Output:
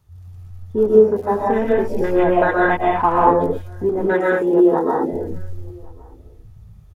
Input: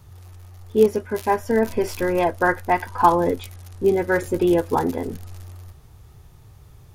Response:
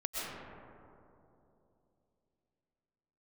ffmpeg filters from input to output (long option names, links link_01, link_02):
-filter_complex "[0:a]afwtdn=0.0398,asettb=1/sr,asplit=3[link_01][link_02][link_03];[link_01]atrim=end=3.894[link_04];[link_02]atrim=start=3.89:end=5.13,asetpts=PTS-STARTPTS,afade=type=in:duration=0.004:curve=qsin,afade=type=out:start_time=1.236:duration=0.004:curve=qsin,highpass=230[link_05];[link_03]atrim=start=5.126[link_06];[link_04][link_05]acrossfade=duration=0.004:curve1=hsin:curve2=qsin[link_07];[link_07][link_06]acrossfade=duration=0.004:curve1=qsin:curve2=hsin,asplit=2[link_08][link_09];[link_09]acompressor=threshold=-31dB:ratio=6,volume=2.5dB[link_10];[link_08][link_10]amix=inputs=2:normalize=0,asplit=2[link_11][link_12];[link_12]adelay=1108,volume=-27dB,highshelf=frequency=4000:gain=-24.9[link_13];[link_11][link_13]amix=inputs=2:normalize=0[link_14];[1:a]atrim=start_sample=2205,afade=type=out:start_time=0.29:duration=0.01,atrim=end_sample=13230[link_15];[link_14][link_15]afir=irnorm=-1:irlink=0,volume=-1dB"